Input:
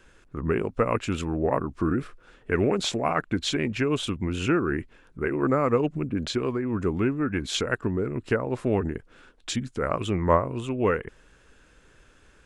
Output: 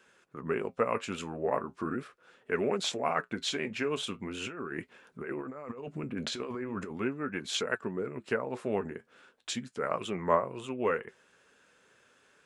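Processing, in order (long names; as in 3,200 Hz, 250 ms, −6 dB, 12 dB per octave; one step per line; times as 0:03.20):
high-pass filter 230 Hz 12 dB per octave
parametric band 310 Hz −8 dB 0.34 octaves
0:04.47–0:06.91: compressor whose output falls as the input rises −34 dBFS, ratio −1
flanger 0.39 Hz, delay 4.5 ms, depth 6.9 ms, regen −62%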